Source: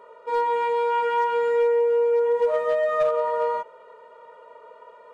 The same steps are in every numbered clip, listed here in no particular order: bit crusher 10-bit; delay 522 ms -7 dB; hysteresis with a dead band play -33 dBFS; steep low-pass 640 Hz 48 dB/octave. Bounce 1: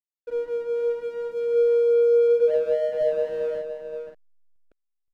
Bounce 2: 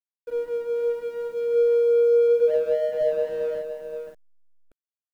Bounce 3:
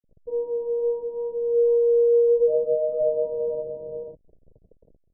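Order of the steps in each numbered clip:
bit crusher > steep low-pass > hysteresis with a dead band > delay; steep low-pass > hysteresis with a dead band > delay > bit crusher; delay > bit crusher > hysteresis with a dead band > steep low-pass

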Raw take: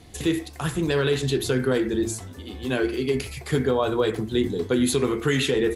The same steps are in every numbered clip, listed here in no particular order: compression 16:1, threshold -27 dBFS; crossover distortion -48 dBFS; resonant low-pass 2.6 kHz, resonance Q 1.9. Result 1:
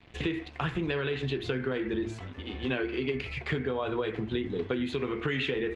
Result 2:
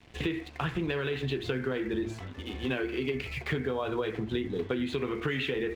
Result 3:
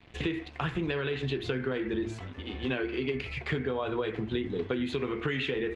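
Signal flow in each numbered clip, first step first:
crossover distortion > compression > resonant low-pass; resonant low-pass > crossover distortion > compression; crossover distortion > resonant low-pass > compression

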